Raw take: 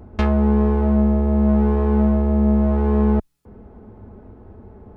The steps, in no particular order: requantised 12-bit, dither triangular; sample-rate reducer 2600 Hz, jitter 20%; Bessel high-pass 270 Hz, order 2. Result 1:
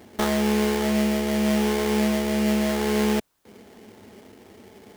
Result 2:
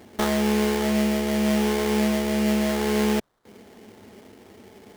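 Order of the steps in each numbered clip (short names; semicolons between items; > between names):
Bessel high-pass > sample-rate reducer > requantised; requantised > Bessel high-pass > sample-rate reducer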